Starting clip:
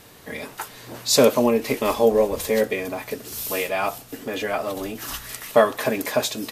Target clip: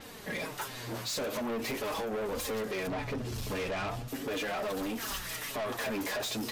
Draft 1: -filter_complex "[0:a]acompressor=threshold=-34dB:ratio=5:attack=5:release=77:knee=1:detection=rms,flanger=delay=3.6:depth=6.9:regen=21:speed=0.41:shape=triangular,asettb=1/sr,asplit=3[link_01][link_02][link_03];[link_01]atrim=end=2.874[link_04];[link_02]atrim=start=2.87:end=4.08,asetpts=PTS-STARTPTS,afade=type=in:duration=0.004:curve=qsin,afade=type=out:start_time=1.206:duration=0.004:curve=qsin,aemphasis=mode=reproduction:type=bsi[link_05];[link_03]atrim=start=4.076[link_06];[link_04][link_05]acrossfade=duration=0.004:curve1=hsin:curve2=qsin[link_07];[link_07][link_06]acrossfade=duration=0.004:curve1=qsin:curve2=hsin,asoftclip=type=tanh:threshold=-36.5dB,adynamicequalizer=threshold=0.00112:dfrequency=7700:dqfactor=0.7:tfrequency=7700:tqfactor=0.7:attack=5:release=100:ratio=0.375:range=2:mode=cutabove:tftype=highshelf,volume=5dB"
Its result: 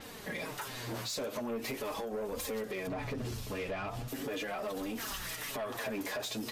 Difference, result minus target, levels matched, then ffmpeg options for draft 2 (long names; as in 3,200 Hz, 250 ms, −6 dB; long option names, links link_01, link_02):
downward compressor: peak gain reduction +8.5 dB
-filter_complex "[0:a]acompressor=threshold=-23.5dB:ratio=5:attack=5:release=77:knee=1:detection=rms,flanger=delay=3.6:depth=6.9:regen=21:speed=0.41:shape=triangular,asettb=1/sr,asplit=3[link_01][link_02][link_03];[link_01]atrim=end=2.874[link_04];[link_02]atrim=start=2.87:end=4.08,asetpts=PTS-STARTPTS,afade=type=in:duration=0.004:curve=qsin,afade=type=out:start_time=1.206:duration=0.004:curve=qsin,aemphasis=mode=reproduction:type=bsi[link_05];[link_03]atrim=start=4.076[link_06];[link_04][link_05]acrossfade=duration=0.004:curve1=hsin:curve2=qsin[link_07];[link_07][link_06]acrossfade=duration=0.004:curve1=qsin:curve2=hsin,asoftclip=type=tanh:threshold=-36.5dB,adynamicequalizer=threshold=0.00112:dfrequency=7700:dqfactor=0.7:tfrequency=7700:tqfactor=0.7:attack=5:release=100:ratio=0.375:range=2:mode=cutabove:tftype=highshelf,volume=5dB"